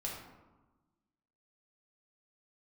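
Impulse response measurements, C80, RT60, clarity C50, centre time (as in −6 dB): 5.0 dB, 1.2 s, 2.5 dB, 52 ms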